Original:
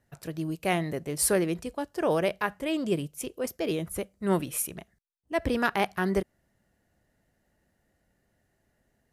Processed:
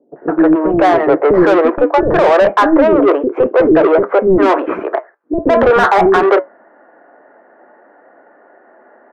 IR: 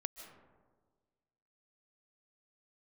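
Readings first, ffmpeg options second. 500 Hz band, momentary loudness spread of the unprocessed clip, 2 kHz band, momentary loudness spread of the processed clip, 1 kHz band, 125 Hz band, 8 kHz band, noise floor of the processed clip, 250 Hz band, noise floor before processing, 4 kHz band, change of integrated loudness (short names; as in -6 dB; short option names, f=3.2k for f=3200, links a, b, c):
+20.5 dB, 9 LU, +15.0 dB, 8 LU, +20.5 dB, +7.5 dB, under -10 dB, -48 dBFS, +17.5 dB, -74 dBFS, +8.0 dB, +18.0 dB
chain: -filter_complex "[0:a]asuperpass=centerf=670:order=8:qfactor=0.53,flanger=delay=6.7:depth=2:regen=-71:speed=0.85:shape=triangular,asplit=2[a][b];[b]highpass=f=720:p=1,volume=26dB,asoftclip=type=tanh:threshold=-18.5dB[c];[a][c]amix=inputs=2:normalize=0,lowpass=f=1.1k:p=1,volume=-6dB,acrossover=split=400[d][e];[e]adelay=160[f];[d][f]amix=inputs=2:normalize=0,alimiter=level_in=24dB:limit=-1dB:release=50:level=0:latency=1,volume=-1dB"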